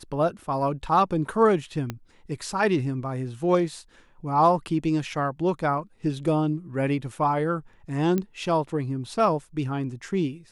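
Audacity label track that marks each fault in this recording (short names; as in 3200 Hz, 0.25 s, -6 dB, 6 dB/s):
1.900000	1.900000	pop -16 dBFS
8.180000	8.180000	pop -14 dBFS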